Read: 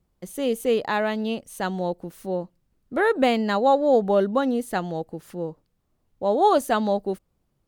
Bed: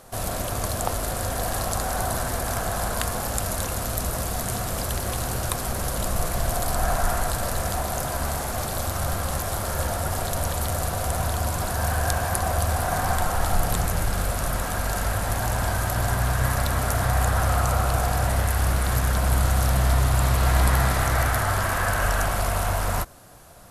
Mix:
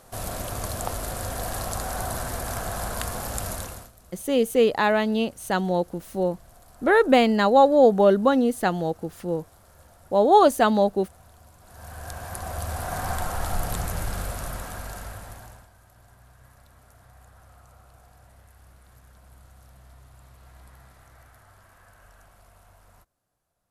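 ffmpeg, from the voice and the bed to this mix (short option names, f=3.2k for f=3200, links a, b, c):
-filter_complex "[0:a]adelay=3900,volume=3dB[a];[1:a]volume=18dB,afade=t=out:st=3.5:d=0.41:silence=0.0707946,afade=t=in:st=11.62:d=1.46:silence=0.0794328,afade=t=out:st=14.11:d=1.57:silence=0.0501187[b];[a][b]amix=inputs=2:normalize=0"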